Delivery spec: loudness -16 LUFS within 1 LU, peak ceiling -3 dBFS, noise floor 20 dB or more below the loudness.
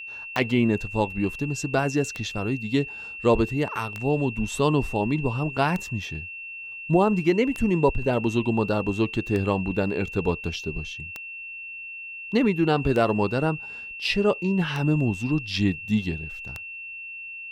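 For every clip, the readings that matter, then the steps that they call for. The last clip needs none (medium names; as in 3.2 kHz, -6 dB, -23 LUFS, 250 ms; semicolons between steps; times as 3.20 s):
clicks found 10; steady tone 2.7 kHz; tone level -35 dBFS; loudness -25.5 LUFS; peak level -9.0 dBFS; loudness target -16.0 LUFS
-> de-click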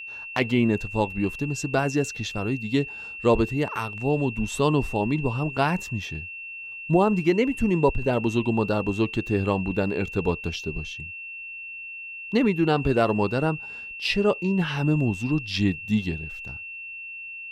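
clicks found 0; steady tone 2.7 kHz; tone level -35 dBFS
-> band-stop 2.7 kHz, Q 30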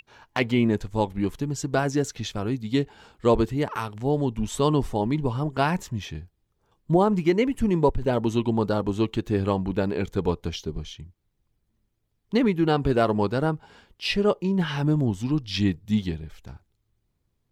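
steady tone not found; loudness -25.0 LUFS; peak level -9.0 dBFS; loudness target -16.0 LUFS
-> trim +9 dB; peak limiter -3 dBFS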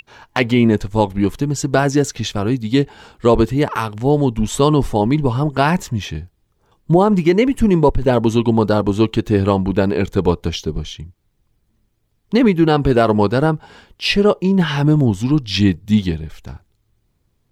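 loudness -16.5 LUFS; peak level -3.0 dBFS; noise floor -65 dBFS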